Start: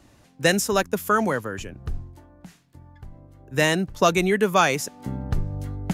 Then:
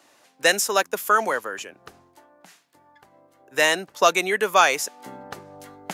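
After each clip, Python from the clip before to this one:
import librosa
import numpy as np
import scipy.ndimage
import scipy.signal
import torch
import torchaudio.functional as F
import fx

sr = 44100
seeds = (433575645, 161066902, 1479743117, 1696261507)

y = scipy.signal.sosfilt(scipy.signal.butter(2, 540.0, 'highpass', fs=sr, output='sos'), x)
y = F.gain(torch.from_numpy(y), 3.0).numpy()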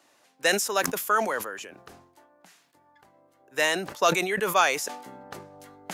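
y = fx.sustainer(x, sr, db_per_s=76.0)
y = F.gain(torch.from_numpy(y), -5.0).numpy()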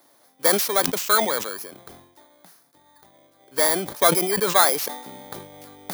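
y = fx.bit_reversed(x, sr, seeds[0], block=16)
y = F.gain(torch.from_numpy(y), 4.5).numpy()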